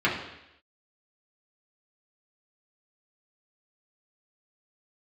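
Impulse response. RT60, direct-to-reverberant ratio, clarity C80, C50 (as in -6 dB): 0.85 s, -6.5 dB, 8.5 dB, 5.5 dB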